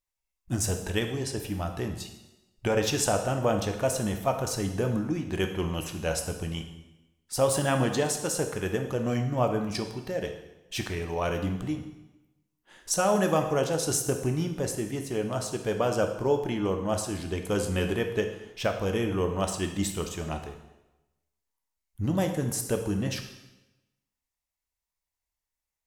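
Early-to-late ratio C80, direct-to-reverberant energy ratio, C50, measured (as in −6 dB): 10.0 dB, 5.0 dB, 7.5 dB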